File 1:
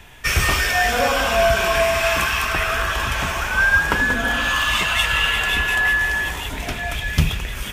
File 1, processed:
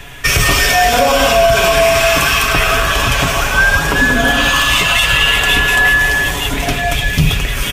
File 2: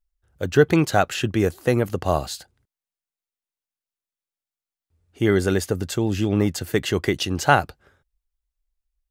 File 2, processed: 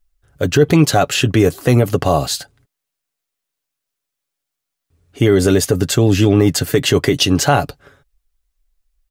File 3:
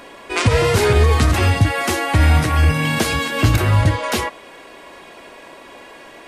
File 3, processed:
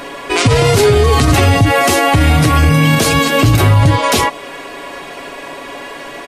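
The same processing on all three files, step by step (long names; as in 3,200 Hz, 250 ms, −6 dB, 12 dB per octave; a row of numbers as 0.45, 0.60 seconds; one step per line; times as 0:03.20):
notch filter 890 Hz, Q 12
dynamic equaliser 1,600 Hz, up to −6 dB, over −34 dBFS, Q 1.4
comb filter 7.1 ms, depth 48%
brickwall limiter −12.5 dBFS
normalise the peak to −2 dBFS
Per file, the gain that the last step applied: +10.5, +10.5, +10.5 decibels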